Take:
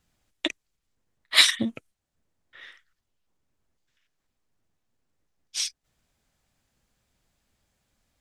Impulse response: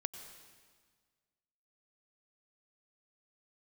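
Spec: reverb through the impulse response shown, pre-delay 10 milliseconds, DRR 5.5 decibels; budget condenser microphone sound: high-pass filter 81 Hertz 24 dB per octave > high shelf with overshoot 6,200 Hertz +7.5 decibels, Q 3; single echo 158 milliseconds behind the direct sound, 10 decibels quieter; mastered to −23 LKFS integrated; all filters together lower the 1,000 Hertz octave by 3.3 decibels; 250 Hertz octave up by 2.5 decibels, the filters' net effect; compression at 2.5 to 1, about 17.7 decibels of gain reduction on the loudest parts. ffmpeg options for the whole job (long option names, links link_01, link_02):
-filter_complex "[0:a]equalizer=frequency=250:width_type=o:gain=3,equalizer=frequency=1000:width_type=o:gain=-4,acompressor=threshold=-40dB:ratio=2.5,aecho=1:1:158:0.316,asplit=2[link_01][link_02];[1:a]atrim=start_sample=2205,adelay=10[link_03];[link_02][link_03]afir=irnorm=-1:irlink=0,volume=-5dB[link_04];[link_01][link_04]amix=inputs=2:normalize=0,highpass=frequency=81:width=0.5412,highpass=frequency=81:width=1.3066,highshelf=frequency=6200:width_type=q:width=3:gain=7.5,volume=14dB"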